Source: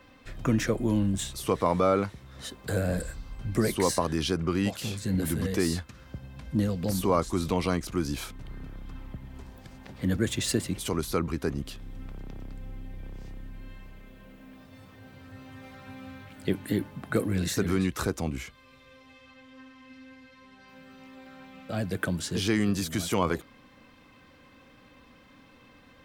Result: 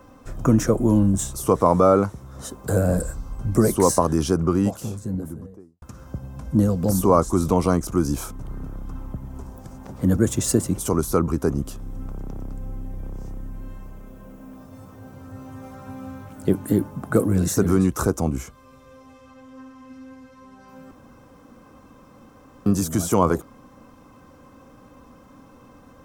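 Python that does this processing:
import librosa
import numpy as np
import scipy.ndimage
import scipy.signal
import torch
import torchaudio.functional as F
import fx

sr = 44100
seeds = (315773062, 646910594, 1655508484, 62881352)

y = fx.studio_fade_out(x, sr, start_s=4.27, length_s=1.55)
y = fx.edit(y, sr, fx.room_tone_fill(start_s=20.91, length_s=1.75), tone=tone)
y = fx.band_shelf(y, sr, hz=2800.0, db=-13.5, octaves=1.7)
y = F.gain(torch.from_numpy(y), 8.0).numpy()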